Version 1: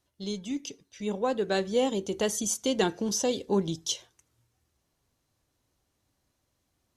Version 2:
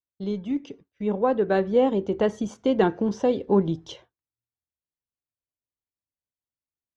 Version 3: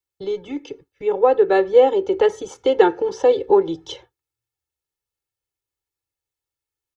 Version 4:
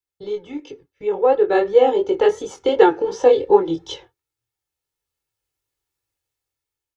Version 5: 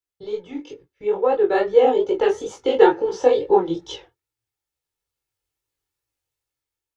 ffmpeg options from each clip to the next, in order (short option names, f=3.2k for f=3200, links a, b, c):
-af "lowpass=1.6k,agate=range=-33dB:threshold=-49dB:ratio=3:detection=peak,volume=6dB"
-filter_complex "[0:a]acrossover=split=300|390|1100[a][b][c][d];[a]acompressor=threshold=-39dB:ratio=6[e];[e][b][c][d]amix=inputs=4:normalize=0,aecho=1:1:2.3:0.95,volume=4dB"
-af "flanger=delay=19:depth=5.3:speed=2.8,dynaudnorm=f=620:g=5:m=10.5dB"
-af "flanger=delay=16:depth=8:speed=2.3,volume=1.5dB"